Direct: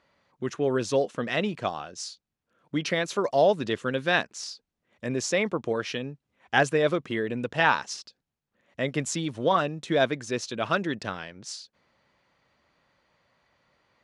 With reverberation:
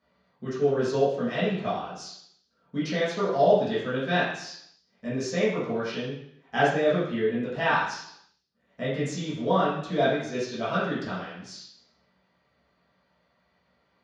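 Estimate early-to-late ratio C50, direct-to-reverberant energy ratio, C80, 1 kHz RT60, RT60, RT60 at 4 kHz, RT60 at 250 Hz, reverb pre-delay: 1.5 dB, -11.5 dB, 5.0 dB, 0.70 s, 0.70 s, 0.70 s, 0.75 s, 3 ms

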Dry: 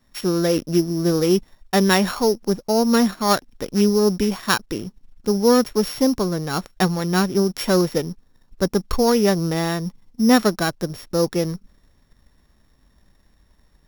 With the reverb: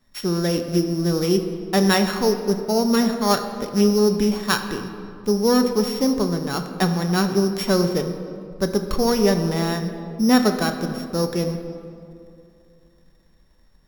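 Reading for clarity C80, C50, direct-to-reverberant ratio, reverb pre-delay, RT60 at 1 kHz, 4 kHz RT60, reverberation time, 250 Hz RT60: 9.0 dB, 8.0 dB, 5.5 dB, 5 ms, 2.4 s, 1.4 s, 2.6 s, 2.8 s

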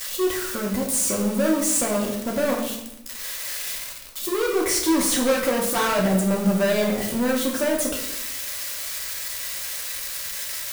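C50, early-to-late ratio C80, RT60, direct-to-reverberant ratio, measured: 5.0 dB, 8.0 dB, 0.85 s, -2.0 dB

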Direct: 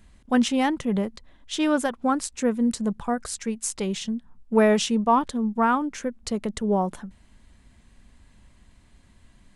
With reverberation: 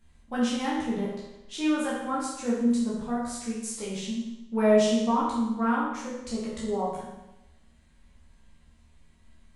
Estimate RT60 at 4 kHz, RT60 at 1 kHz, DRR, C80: 0.90 s, 0.95 s, -7.0 dB, 4.0 dB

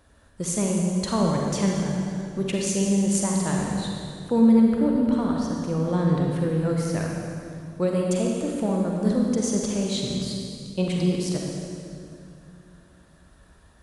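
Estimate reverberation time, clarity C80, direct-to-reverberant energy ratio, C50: 2.4 s, 1.0 dB, -1.0 dB, -0.5 dB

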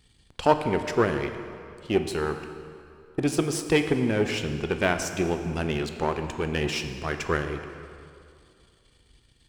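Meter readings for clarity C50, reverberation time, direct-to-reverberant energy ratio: 8.0 dB, 2.5 s, 7.0 dB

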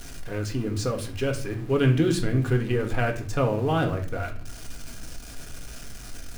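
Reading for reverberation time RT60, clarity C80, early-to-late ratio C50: 0.50 s, 15.5 dB, 11.0 dB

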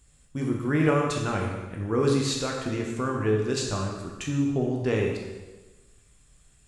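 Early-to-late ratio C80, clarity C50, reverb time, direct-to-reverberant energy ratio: 4.5 dB, 2.5 dB, 1.2 s, -1.0 dB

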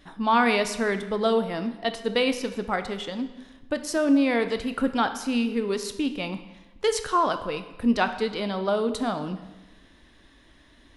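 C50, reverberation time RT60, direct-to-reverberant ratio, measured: 11.0 dB, 1.1 s, 9.0 dB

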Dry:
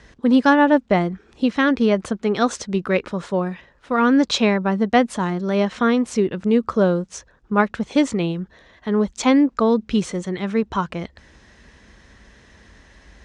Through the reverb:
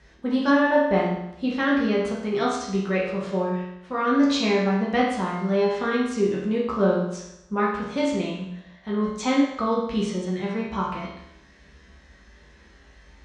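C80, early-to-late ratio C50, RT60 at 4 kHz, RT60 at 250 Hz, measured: 5.0 dB, 2.0 dB, 0.80 s, 0.80 s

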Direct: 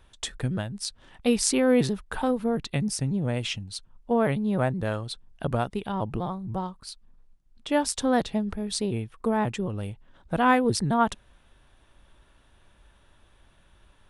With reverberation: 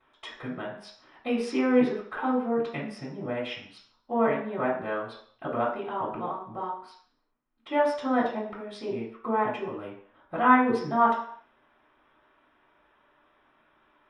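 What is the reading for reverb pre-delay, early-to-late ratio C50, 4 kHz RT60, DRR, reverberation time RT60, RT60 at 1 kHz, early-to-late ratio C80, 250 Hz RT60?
3 ms, 4.0 dB, 0.60 s, -14.5 dB, 0.55 s, 0.60 s, 8.5 dB, 0.45 s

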